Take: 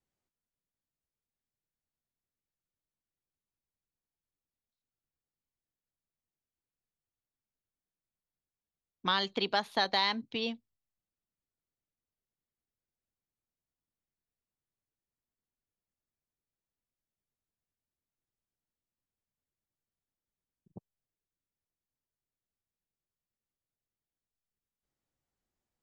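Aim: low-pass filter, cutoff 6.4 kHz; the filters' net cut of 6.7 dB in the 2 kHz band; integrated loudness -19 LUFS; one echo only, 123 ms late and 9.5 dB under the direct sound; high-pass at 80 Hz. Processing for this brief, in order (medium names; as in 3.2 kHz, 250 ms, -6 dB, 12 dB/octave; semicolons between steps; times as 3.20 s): high-pass 80 Hz; low-pass 6.4 kHz; peaking EQ 2 kHz -8.5 dB; delay 123 ms -9.5 dB; trim +14 dB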